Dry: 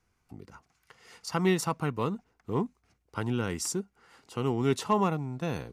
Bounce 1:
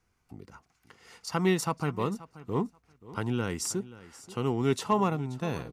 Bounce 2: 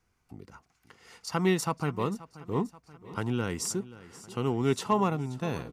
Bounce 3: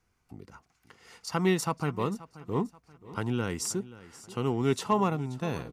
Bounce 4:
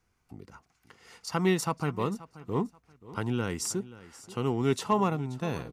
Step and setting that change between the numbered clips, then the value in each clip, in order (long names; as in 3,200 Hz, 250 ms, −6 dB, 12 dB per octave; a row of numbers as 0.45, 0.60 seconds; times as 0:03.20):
repeating echo, feedback: 16, 55, 37, 25%